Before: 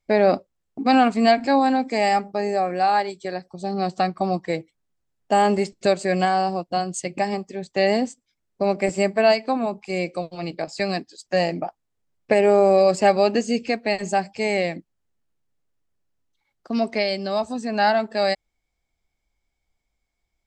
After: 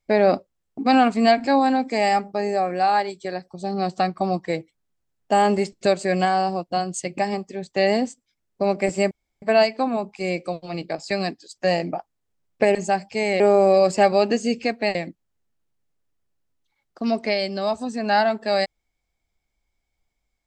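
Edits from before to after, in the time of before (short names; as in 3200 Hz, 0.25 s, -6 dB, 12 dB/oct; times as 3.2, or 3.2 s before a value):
9.11 insert room tone 0.31 s
13.99–14.64 move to 12.44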